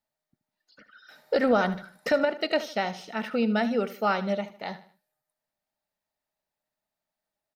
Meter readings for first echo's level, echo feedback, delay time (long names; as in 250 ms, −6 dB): −15.0 dB, 37%, 77 ms